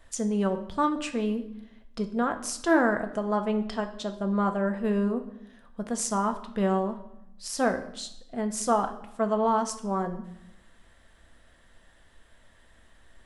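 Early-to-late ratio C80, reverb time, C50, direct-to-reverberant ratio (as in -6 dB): 15.0 dB, 0.80 s, 12.0 dB, 6.0 dB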